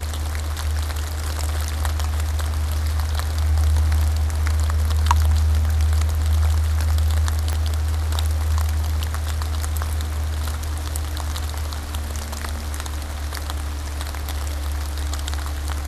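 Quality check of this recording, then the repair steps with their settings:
7.53 pop -11 dBFS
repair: de-click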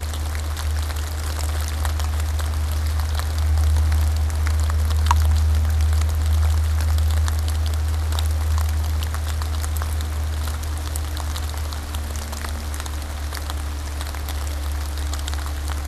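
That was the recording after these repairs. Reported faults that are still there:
7.53 pop

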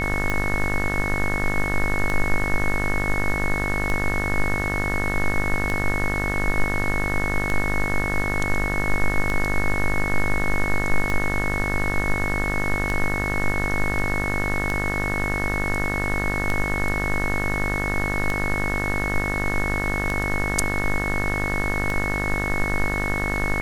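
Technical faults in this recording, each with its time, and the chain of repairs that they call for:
buzz 50 Hz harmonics 38 -27 dBFS
tick 33 1/3 rpm -11 dBFS
tone 2200 Hz -26 dBFS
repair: de-click; de-hum 50 Hz, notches 38; notch 2200 Hz, Q 30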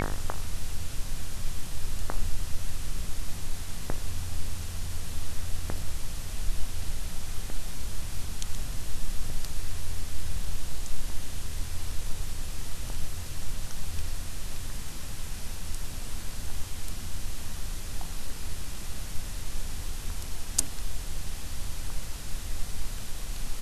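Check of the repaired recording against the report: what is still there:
none

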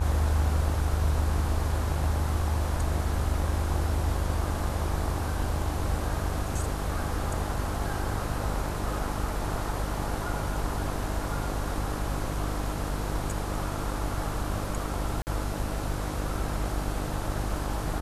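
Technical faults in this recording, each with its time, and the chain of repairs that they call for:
buzz 50 Hz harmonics 34 -33 dBFS
15.22–15.27 gap 49 ms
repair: de-hum 50 Hz, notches 34; interpolate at 15.22, 49 ms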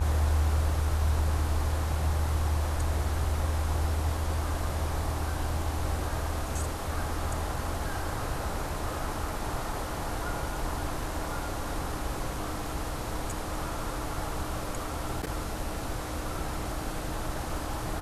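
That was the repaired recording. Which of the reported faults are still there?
none

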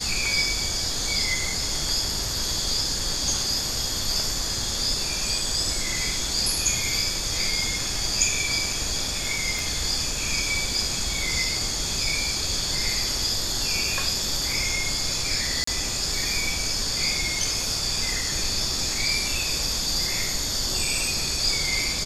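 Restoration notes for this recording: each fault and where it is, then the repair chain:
9.59 pop
15.64–15.67 gap 34 ms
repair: de-click; interpolate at 15.64, 34 ms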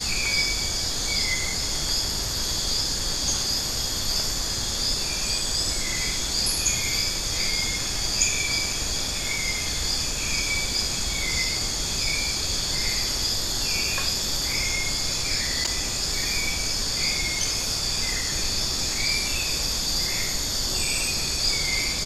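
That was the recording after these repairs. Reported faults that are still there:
9.59 pop

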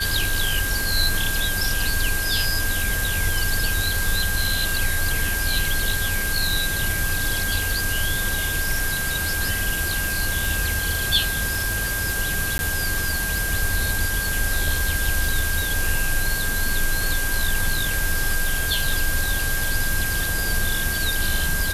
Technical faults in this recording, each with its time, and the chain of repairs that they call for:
crackle 51/s -25 dBFS
tone 1600 Hz -26 dBFS
12.58–12.59 gap 11 ms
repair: de-click; notch 1600 Hz, Q 30; interpolate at 12.58, 11 ms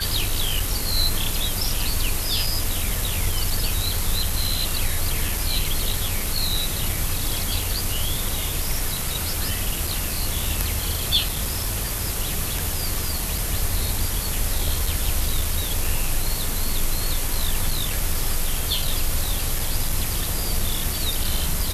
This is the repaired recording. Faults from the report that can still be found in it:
none

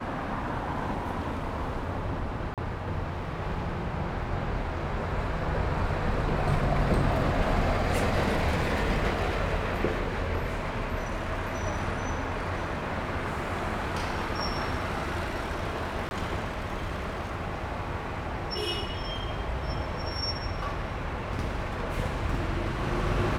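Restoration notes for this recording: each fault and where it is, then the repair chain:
2.54–2.58 gap 37 ms
16.09–16.11 gap 21 ms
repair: interpolate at 2.54, 37 ms; interpolate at 16.09, 21 ms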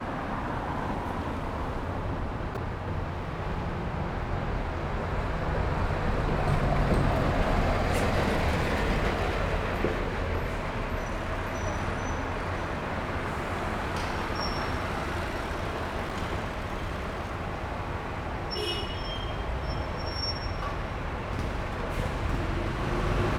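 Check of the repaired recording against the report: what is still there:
none

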